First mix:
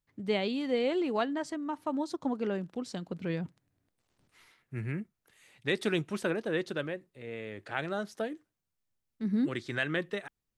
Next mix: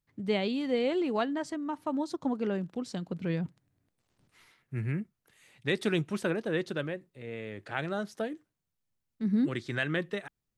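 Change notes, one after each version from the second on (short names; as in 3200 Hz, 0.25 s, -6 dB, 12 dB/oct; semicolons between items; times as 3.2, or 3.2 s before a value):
master: add bell 140 Hz +4 dB 1.4 oct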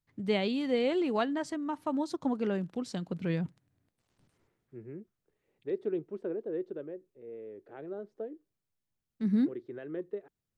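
second voice: add band-pass 400 Hz, Q 3.1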